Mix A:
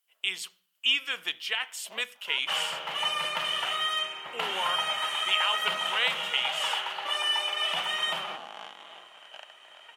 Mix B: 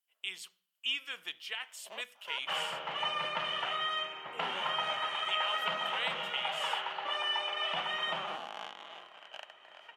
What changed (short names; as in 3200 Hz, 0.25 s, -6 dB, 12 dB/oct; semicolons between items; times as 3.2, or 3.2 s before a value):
speech -9.0 dB; second sound: add tape spacing loss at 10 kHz 22 dB